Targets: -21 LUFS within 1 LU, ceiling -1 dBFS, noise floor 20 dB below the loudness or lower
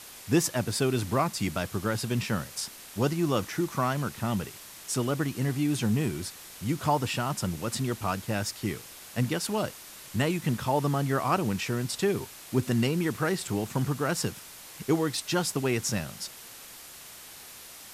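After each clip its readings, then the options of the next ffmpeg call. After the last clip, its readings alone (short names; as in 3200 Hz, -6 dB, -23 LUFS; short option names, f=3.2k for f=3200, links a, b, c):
noise floor -47 dBFS; noise floor target -50 dBFS; loudness -29.5 LUFS; peak -12.0 dBFS; loudness target -21.0 LUFS
-> -af "afftdn=nr=6:nf=-47"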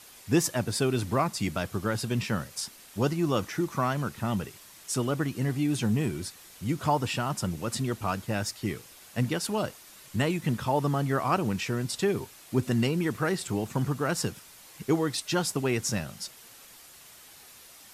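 noise floor -51 dBFS; loudness -29.5 LUFS; peak -12.0 dBFS; loudness target -21.0 LUFS
-> -af "volume=8.5dB"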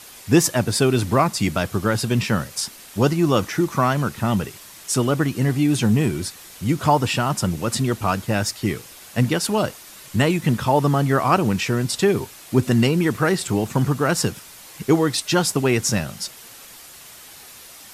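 loudness -21.0 LUFS; peak -3.5 dBFS; noise floor -43 dBFS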